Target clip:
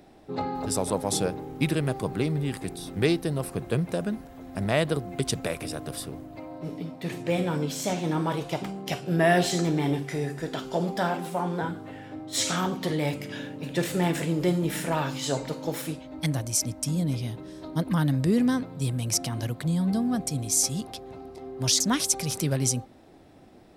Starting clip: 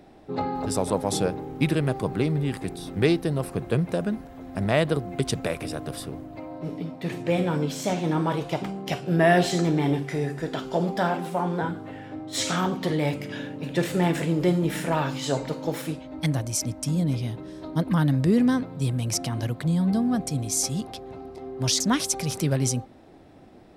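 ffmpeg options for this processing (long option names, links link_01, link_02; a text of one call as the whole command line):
ffmpeg -i in.wav -af "highshelf=frequency=4600:gain=6.5,volume=-2.5dB" out.wav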